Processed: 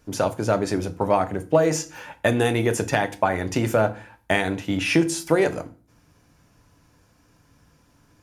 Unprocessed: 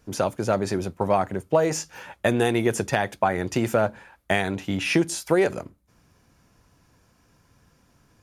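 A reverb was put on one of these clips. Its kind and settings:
feedback delay network reverb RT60 0.39 s, low-frequency decay 1.45×, high-frequency decay 0.85×, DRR 8.5 dB
level +1 dB

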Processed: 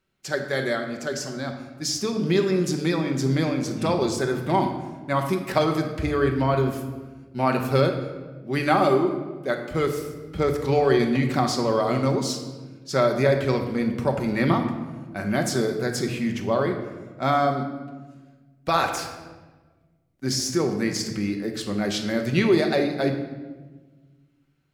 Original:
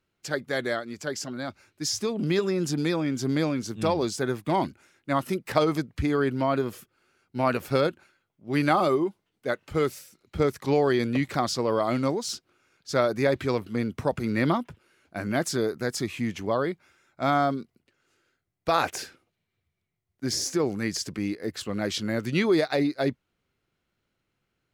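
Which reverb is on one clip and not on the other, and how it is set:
rectangular room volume 1,000 cubic metres, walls mixed, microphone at 1.1 metres
level +1 dB

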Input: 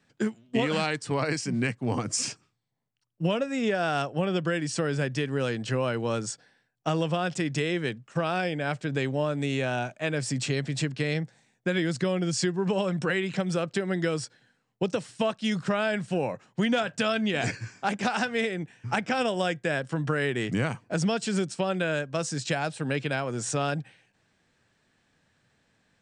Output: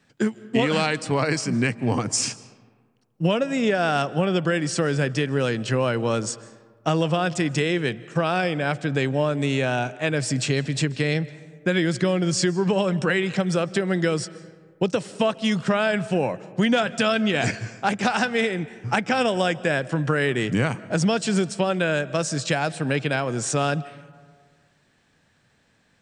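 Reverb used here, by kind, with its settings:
comb and all-pass reverb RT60 1.7 s, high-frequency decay 0.45×, pre-delay 110 ms, DRR 18.5 dB
level +5 dB

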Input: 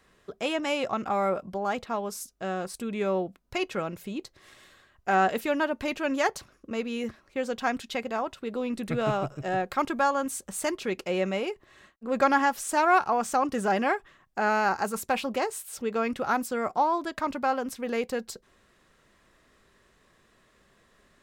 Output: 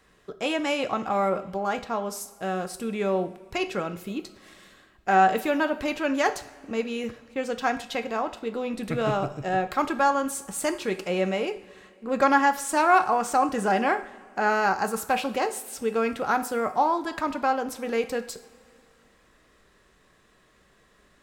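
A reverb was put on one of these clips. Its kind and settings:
coupled-rooms reverb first 0.5 s, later 2.8 s, from −18 dB, DRR 8.5 dB
level +1.5 dB

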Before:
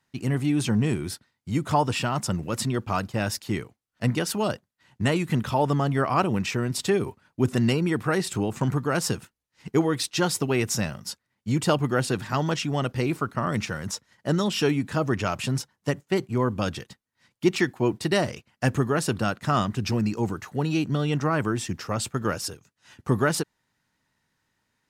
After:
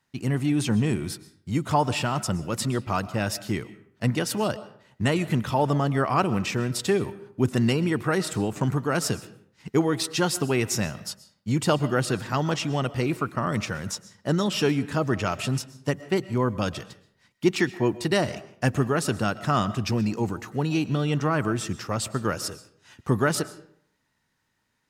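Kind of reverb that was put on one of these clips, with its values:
comb and all-pass reverb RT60 0.62 s, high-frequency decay 0.65×, pre-delay 85 ms, DRR 16 dB

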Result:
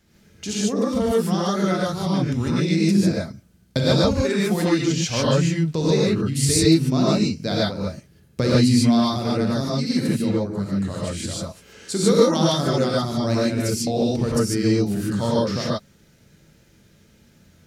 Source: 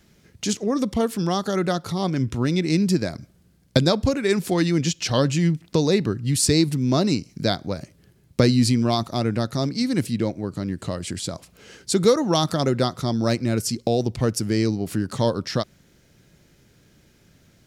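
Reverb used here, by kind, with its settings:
reverb whose tail is shaped and stops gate 170 ms rising, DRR −6.5 dB
level −6 dB

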